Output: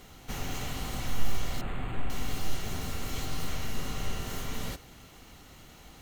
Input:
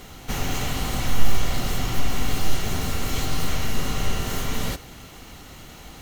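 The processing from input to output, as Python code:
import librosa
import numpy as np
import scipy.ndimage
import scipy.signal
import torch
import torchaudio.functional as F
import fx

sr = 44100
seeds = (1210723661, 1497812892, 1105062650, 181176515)

y = fx.resample_linear(x, sr, factor=8, at=(1.61, 2.1))
y = y * librosa.db_to_amplitude(-9.0)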